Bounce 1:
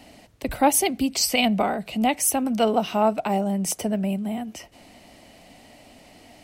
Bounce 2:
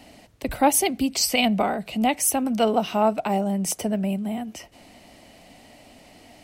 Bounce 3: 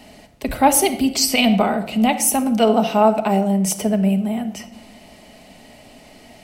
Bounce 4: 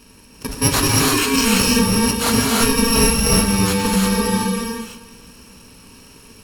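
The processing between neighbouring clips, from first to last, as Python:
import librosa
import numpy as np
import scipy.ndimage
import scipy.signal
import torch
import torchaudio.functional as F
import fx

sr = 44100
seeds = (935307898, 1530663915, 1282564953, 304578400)

y1 = x
y2 = fx.room_shoebox(y1, sr, seeds[0], volume_m3=2600.0, walls='furnished', distance_m=1.4)
y2 = y2 * 10.0 ** (3.5 / 20.0)
y3 = fx.bit_reversed(y2, sr, seeds[1], block=64)
y3 = fx.rev_gated(y3, sr, seeds[2], gate_ms=370, shape='rising', drr_db=-2.5)
y3 = np.interp(np.arange(len(y3)), np.arange(len(y3))[::2], y3[::2])
y3 = y3 * 10.0 ** (-2.5 / 20.0)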